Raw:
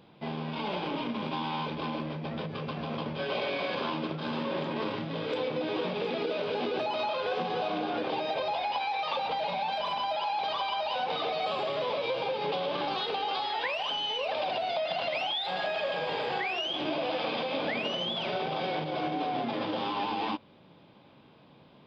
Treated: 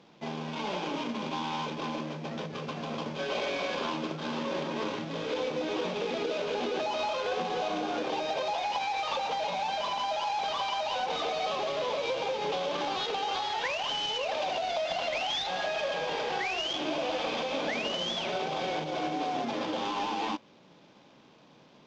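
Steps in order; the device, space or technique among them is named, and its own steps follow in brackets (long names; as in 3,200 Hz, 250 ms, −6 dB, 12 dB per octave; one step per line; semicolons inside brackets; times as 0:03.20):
early wireless headset (high-pass filter 160 Hz 12 dB per octave; variable-slope delta modulation 32 kbit/s)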